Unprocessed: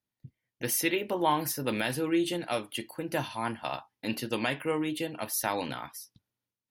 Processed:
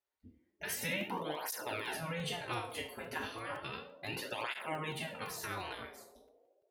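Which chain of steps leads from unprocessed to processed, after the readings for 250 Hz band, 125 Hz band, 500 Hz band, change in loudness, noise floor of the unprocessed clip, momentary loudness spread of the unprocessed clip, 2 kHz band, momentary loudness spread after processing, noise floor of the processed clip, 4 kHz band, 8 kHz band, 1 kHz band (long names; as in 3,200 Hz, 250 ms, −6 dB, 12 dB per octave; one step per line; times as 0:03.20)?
−14.0 dB, −6.5 dB, −10.5 dB, −8.5 dB, below −85 dBFS, 10 LU, −4.5 dB, 8 LU, −78 dBFS, −5.5 dB, −9.5 dB, −8.5 dB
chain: peak hold with a decay on every bin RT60 0.40 s
high-shelf EQ 2,600 Hz −11.5 dB
brickwall limiter −23 dBFS, peak gain reduction 8.5 dB
dynamic equaliser 270 Hz, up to −3 dB, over −45 dBFS, Q 2.4
gate on every frequency bin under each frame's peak −10 dB weak
feedback echo with a band-pass in the loop 71 ms, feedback 84%, band-pass 510 Hz, level −9 dB
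regular buffer underruns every 0.17 s, samples 64, zero, from 0:00.50
through-zero flanger with one copy inverted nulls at 0.33 Hz, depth 6.6 ms
level +5 dB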